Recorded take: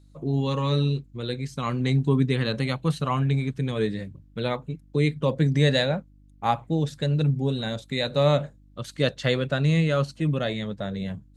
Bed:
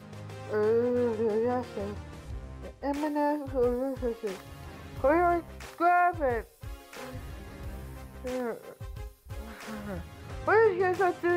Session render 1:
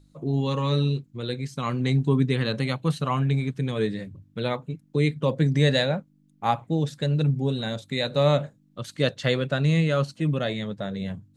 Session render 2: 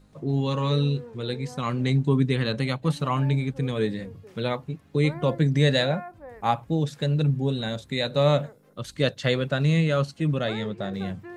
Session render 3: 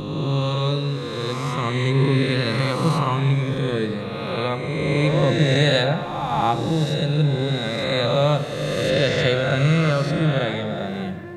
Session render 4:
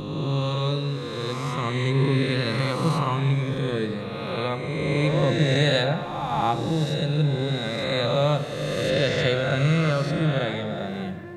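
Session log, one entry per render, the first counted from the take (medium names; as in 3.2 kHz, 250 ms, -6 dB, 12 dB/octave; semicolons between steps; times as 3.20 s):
de-hum 50 Hz, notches 2
add bed -15 dB
reverse spectral sustain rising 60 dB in 2.27 s; simulated room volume 3000 m³, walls mixed, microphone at 0.83 m
trim -3 dB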